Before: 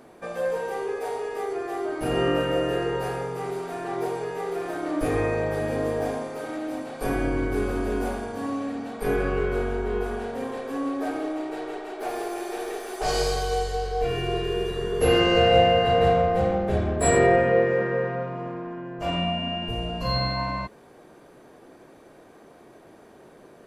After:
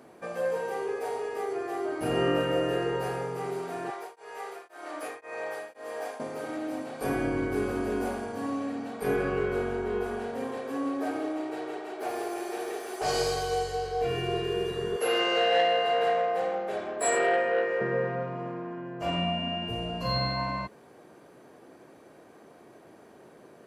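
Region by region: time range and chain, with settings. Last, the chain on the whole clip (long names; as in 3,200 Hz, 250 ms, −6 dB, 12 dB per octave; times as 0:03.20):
0:03.90–0:06.20: high-pass filter 710 Hz + tremolo along a rectified sine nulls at 1.9 Hz
0:14.96–0:17.81: high-pass filter 500 Hz + saturating transformer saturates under 1,100 Hz
whole clip: high-pass filter 86 Hz 12 dB per octave; notch filter 3,600 Hz, Q 22; level −2.5 dB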